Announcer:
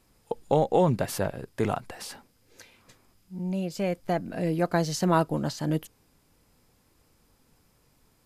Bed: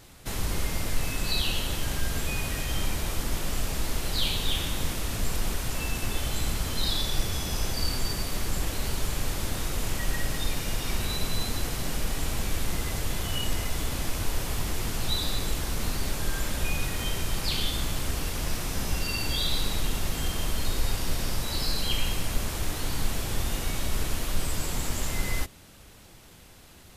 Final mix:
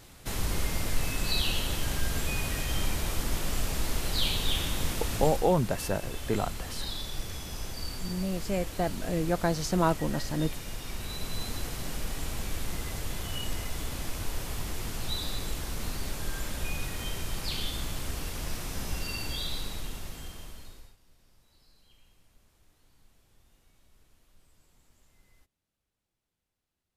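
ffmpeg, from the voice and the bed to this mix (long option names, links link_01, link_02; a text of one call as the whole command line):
ffmpeg -i stem1.wav -i stem2.wav -filter_complex "[0:a]adelay=4700,volume=-2.5dB[link_01];[1:a]volume=2.5dB,afade=type=out:start_time=5.17:duration=0.32:silence=0.421697,afade=type=in:start_time=10.95:duration=0.54:silence=0.668344,afade=type=out:start_time=19.11:duration=1.85:silence=0.0316228[link_02];[link_01][link_02]amix=inputs=2:normalize=0" out.wav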